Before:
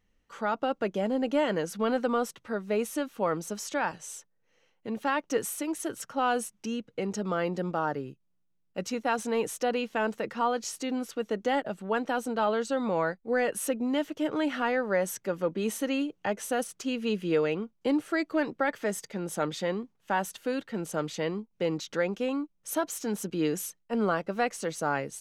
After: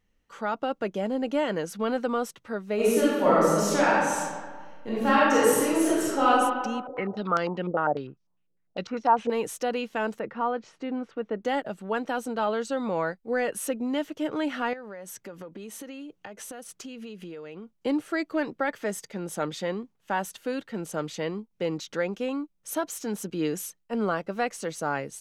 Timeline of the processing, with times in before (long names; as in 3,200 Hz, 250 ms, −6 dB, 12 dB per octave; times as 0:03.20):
0:02.75–0:06.28: thrown reverb, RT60 1.6 s, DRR −9 dB
0:06.87–0:09.30: low-pass on a step sequencer 10 Hz 480–5,500 Hz
0:10.19–0:11.45: low-pass filter 2,000 Hz
0:14.73–0:17.75: downward compressor 20 to 1, threshold −36 dBFS